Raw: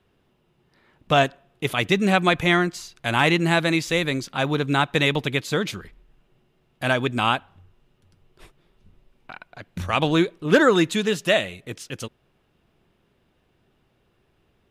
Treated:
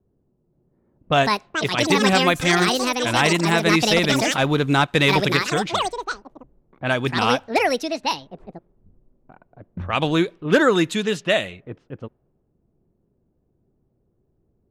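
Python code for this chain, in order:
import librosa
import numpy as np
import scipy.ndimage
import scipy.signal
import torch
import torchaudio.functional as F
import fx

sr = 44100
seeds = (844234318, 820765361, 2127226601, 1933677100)

y = fx.echo_pitch(x, sr, ms=526, semitones=7, count=2, db_per_echo=-3.0)
y = fx.leveller(y, sr, passes=1, at=(3.66, 5.37))
y = fx.env_lowpass(y, sr, base_hz=430.0, full_db=-17.0)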